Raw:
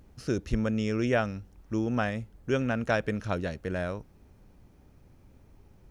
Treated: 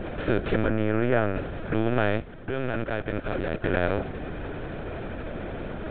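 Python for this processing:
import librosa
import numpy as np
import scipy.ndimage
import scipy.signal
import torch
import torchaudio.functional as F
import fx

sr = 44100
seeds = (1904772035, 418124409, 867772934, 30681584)

y = fx.bin_compress(x, sr, power=0.4)
y = fx.lowpass(y, sr, hz=2200.0, slope=12, at=(0.67, 1.36))
y = fx.level_steps(y, sr, step_db=14, at=(2.18, 3.64))
y = fx.lpc_vocoder(y, sr, seeds[0], excitation='pitch_kept', order=16)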